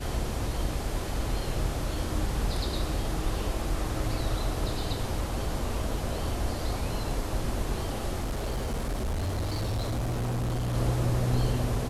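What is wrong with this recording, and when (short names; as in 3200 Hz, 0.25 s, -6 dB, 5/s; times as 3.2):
8.21–10.75 clipped -26.5 dBFS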